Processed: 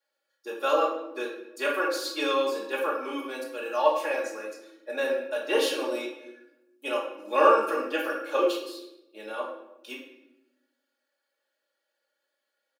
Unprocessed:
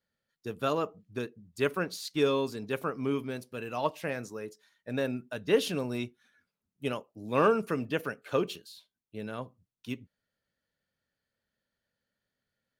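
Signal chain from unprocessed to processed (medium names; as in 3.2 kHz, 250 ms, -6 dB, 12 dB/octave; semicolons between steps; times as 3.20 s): elliptic high-pass 350 Hz, stop band 60 dB; band-stop 2 kHz, Q 15; comb 3.6 ms, depth 96%; simulated room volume 300 m³, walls mixed, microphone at 1.4 m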